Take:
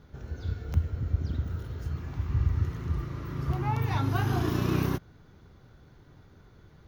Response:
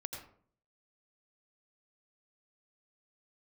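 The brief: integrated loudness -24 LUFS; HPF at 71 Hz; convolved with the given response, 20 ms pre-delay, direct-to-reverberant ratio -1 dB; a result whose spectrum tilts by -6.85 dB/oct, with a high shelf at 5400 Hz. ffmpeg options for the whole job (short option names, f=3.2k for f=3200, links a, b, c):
-filter_complex "[0:a]highpass=71,highshelf=f=5.4k:g=8.5,asplit=2[a][b];[1:a]atrim=start_sample=2205,adelay=20[c];[b][c]afir=irnorm=-1:irlink=0,volume=2.5dB[d];[a][d]amix=inputs=2:normalize=0,volume=2.5dB"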